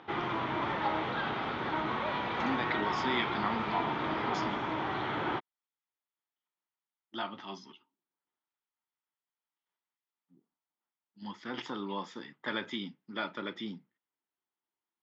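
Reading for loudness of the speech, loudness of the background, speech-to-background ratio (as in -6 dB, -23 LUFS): -38.0 LUFS, -33.5 LUFS, -4.5 dB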